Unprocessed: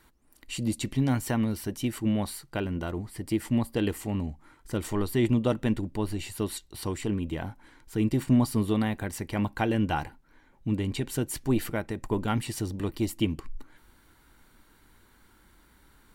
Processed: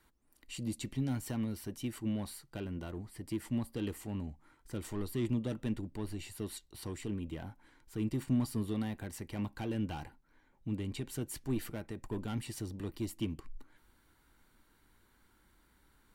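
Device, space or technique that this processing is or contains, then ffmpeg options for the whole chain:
one-band saturation: -filter_complex "[0:a]acrossover=split=370|3100[link_01][link_02][link_03];[link_02]asoftclip=type=tanh:threshold=-33.5dB[link_04];[link_01][link_04][link_03]amix=inputs=3:normalize=0,volume=-8.5dB"

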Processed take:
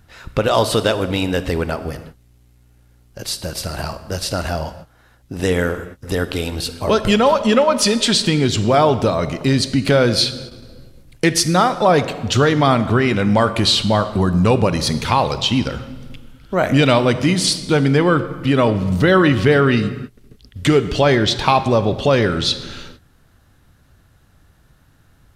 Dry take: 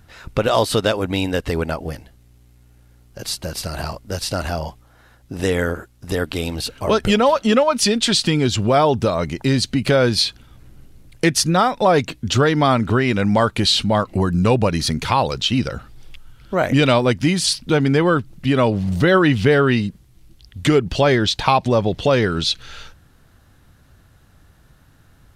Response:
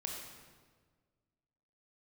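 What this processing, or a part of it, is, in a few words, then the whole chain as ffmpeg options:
keyed gated reverb: -filter_complex "[0:a]asplit=3[link_01][link_02][link_03];[1:a]atrim=start_sample=2205[link_04];[link_02][link_04]afir=irnorm=-1:irlink=0[link_05];[link_03]apad=whole_len=1118290[link_06];[link_05][link_06]sidechaingate=range=-33dB:threshold=-43dB:ratio=16:detection=peak,volume=-6dB[link_07];[link_01][link_07]amix=inputs=2:normalize=0,volume=-1.5dB"

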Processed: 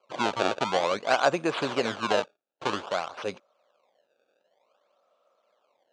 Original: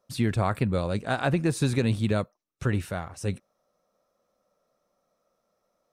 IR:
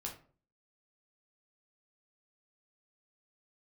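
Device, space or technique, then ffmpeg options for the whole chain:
circuit-bent sampling toy: -af "acrusher=samples=24:mix=1:aa=0.000001:lfo=1:lforange=38.4:lforate=0.53,highpass=520,equalizer=frequency=590:width_type=q:width=4:gain=3,equalizer=frequency=1100:width_type=q:width=4:gain=3,equalizer=frequency=1900:width_type=q:width=4:gain=-8,equalizer=frequency=5200:width_type=q:width=4:gain=-7,lowpass=frequency=5800:width=0.5412,lowpass=frequency=5800:width=1.3066,volume=6dB"

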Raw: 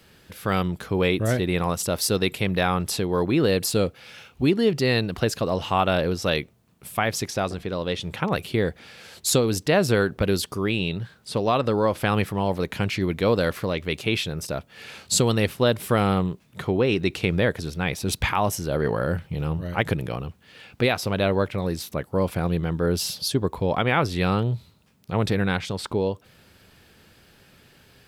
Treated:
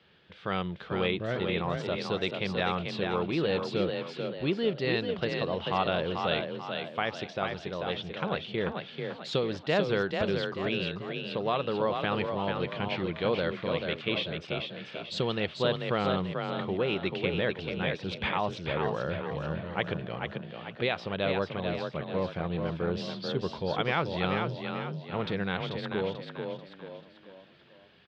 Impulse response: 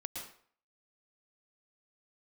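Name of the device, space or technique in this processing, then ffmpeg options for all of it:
frequency-shifting delay pedal into a guitar cabinet: -filter_complex "[0:a]asplit=6[link_01][link_02][link_03][link_04][link_05][link_06];[link_02]adelay=439,afreqshift=30,volume=-5dB[link_07];[link_03]adelay=878,afreqshift=60,volume=-12.5dB[link_08];[link_04]adelay=1317,afreqshift=90,volume=-20.1dB[link_09];[link_05]adelay=1756,afreqshift=120,volume=-27.6dB[link_10];[link_06]adelay=2195,afreqshift=150,volume=-35.1dB[link_11];[link_01][link_07][link_08][link_09][link_10][link_11]amix=inputs=6:normalize=0,highpass=94,equalizer=frequency=110:width_type=q:width=4:gain=-6,equalizer=frequency=260:width_type=q:width=4:gain=-7,equalizer=frequency=3300:width_type=q:width=4:gain=5,lowpass=frequency=3900:width=0.5412,lowpass=frequency=3900:width=1.3066,volume=-7dB"

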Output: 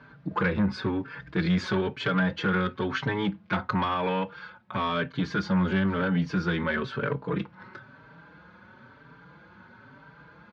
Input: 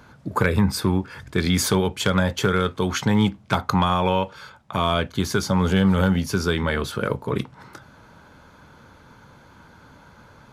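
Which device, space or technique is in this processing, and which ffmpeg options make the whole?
barber-pole flanger into a guitar amplifier: -filter_complex "[0:a]asplit=2[link_01][link_02];[link_02]adelay=4.7,afreqshift=1[link_03];[link_01][link_03]amix=inputs=2:normalize=1,asoftclip=type=tanh:threshold=-19.5dB,highpass=77,equalizer=frequency=82:width_type=q:width=4:gain=-9,equalizer=frequency=170:width_type=q:width=4:gain=4,equalizer=frequency=740:width_type=q:width=4:gain=-4,equalizer=frequency=1600:width_type=q:width=4:gain=5,equalizer=frequency=3400:width_type=q:width=4:gain=-3,lowpass=frequency=3900:width=0.5412,lowpass=frequency=3900:width=1.3066"

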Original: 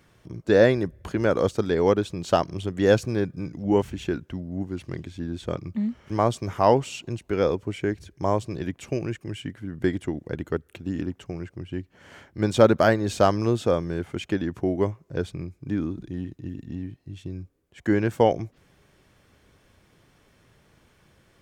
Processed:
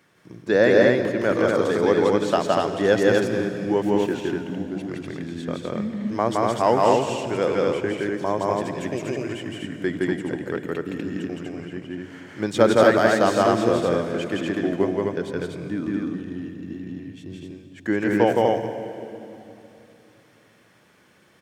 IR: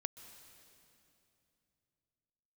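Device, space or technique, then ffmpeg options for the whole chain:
stadium PA: -filter_complex "[0:a]highpass=170,equalizer=frequency=1800:width_type=o:width=0.71:gain=3.5,aecho=1:1:166.2|244.9:0.891|0.794[link_01];[1:a]atrim=start_sample=2205[link_02];[link_01][link_02]afir=irnorm=-1:irlink=0,volume=1.5dB"

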